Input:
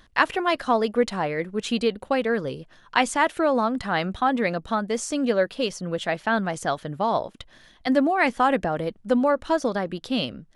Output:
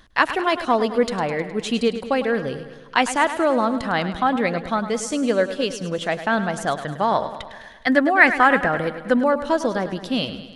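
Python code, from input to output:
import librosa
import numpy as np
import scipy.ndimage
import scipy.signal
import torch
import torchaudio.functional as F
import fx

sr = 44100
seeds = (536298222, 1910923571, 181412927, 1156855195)

y = fx.peak_eq(x, sr, hz=1700.0, db=11.0, octaves=0.69, at=(6.75, 9.14))
y = fx.echo_feedback(y, sr, ms=104, feedback_pct=59, wet_db=-12)
y = y * 10.0 ** (2.0 / 20.0)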